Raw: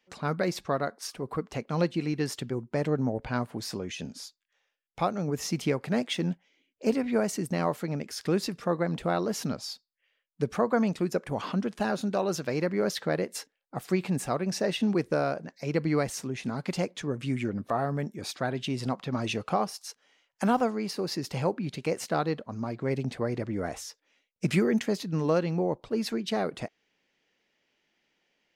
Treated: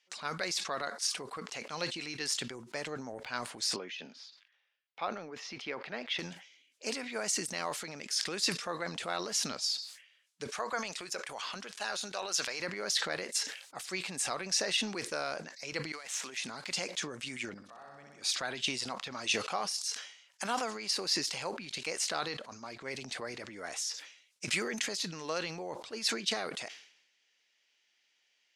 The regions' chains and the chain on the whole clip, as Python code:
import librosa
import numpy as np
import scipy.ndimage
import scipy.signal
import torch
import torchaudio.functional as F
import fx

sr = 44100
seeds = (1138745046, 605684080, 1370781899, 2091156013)

y = fx.chain(x, sr, fx.highpass(hz=200.0, slope=12),
    fx.air_absorb(metres=290.0), at=(3.76, 6.19))
y = fx.chain(y, sr, fx.highpass(hz=160.0, slope=12),
    fx.peak_eq(hz=230.0, db=-7.5, octaves=1.8), at=(10.47, 12.6))
y = fx.chain(y, sr, fx.median_filter(points=9),
    fx.highpass(hz=1100.0, slope=6),
    fx.over_compress(threshold_db=-45.0, ratio=-1.0), at=(15.92, 16.37))
y = fx.chain(y, sr, fx.lowpass(hz=7900.0, slope=12),
    fx.level_steps(step_db=22),
    fx.room_flutter(wall_m=10.7, rt60_s=1.2), at=(17.54, 18.22))
y = fx.weighting(y, sr, curve='ITU-R 468')
y = fx.transient(y, sr, attack_db=1, sustain_db=7)
y = fx.sustainer(y, sr, db_per_s=89.0)
y = y * librosa.db_to_amplitude(-6.5)